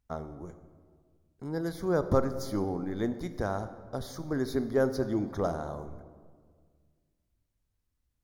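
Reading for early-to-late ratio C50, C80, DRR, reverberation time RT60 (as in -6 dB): 12.0 dB, 13.0 dB, 10.5 dB, 1.7 s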